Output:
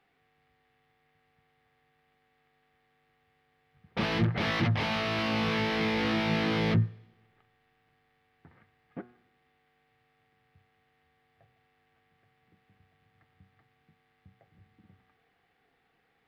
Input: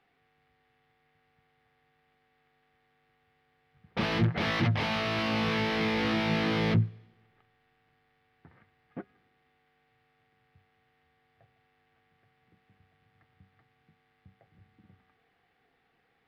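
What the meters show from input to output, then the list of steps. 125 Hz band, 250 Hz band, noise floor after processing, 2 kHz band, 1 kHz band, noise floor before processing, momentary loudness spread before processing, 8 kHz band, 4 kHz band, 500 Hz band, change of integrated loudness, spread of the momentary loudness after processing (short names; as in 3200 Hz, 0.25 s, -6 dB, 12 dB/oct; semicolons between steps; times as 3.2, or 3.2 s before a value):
-0.5 dB, 0.0 dB, -72 dBFS, 0.0 dB, 0.0 dB, -72 dBFS, 15 LU, n/a, 0.0 dB, 0.0 dB, 0.0 dB, 15 LU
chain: de-hum 121 Hz, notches 15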